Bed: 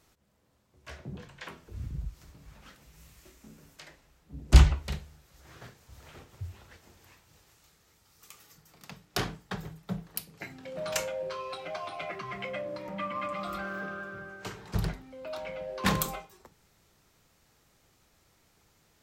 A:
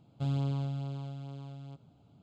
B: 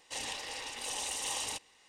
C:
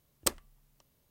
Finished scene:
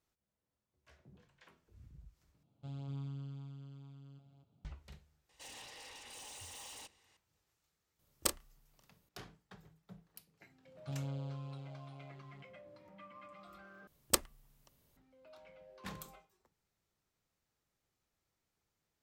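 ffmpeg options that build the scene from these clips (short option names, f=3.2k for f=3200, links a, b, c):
-filter_complex "[1:a]asplit=2[a][b];[3:a]asplit=2[c][d];[0:a]volume=-20dB[e];[a]aecho=1:1:246:0.596[f];[2:a]asoftclip=type=tanh:threshold=-39dB[g];[c]asplit=2[h][i];[i]adelay=31,volume=-8dB[j];[h][j]amix=inputs=2:normalize=0[k];[e]asplit=3[l][m][n];[l]atrim=end=2.434[o];[f]atrim=end=2.22,asetpts=PTS-STARTPTS,volume=-14dB[p];[m]atrim=start=4.646:end=13.874[q];[d]atrim=end=1.1,asetpts=PTS-STARTPTS,volume=-0.5dB[r];[n]atrim=start=14.966[s];[g]atrim=end=1.88,asetpts=PTS-STARTPTS,volume=-8.5dB,afade=t=in:d=0.004:c=hsin,afade=t=out:st=1.876:d=0.004:c=hsin,adelay=233289S[t];[k]atrim=end=1.1,asetpts=PTS-STARTPTS,volume=-4.5dB,afade=t=in:d=0.004:c=hsin,afade=t=out:st=1.096:d=0.004:c=hsin,adelay=7990[u];[b]atrim=end=2.22,asetpts=PTS-STARTPTS,volume=-9.5dB,afade=t=in:d=0.004:c=hsin,afade=t=out:st=2.216:d=0.004:c=hsin,adelay=10670[v];[o][p]acrossfade=d=0.004:c1=hsin:c2=hsin[w];[w][q]acrossfade=d=0.004:c1=hsin:c2=hsin[x];[x][r]acrossfade=d=0.004:c1=hsin:c2=hsin[y];[y][s]acrossfade=d=0.004:c1=hsin:c2=hsin[z];[z][t][u][v]amix=inputs=4:normalize=0"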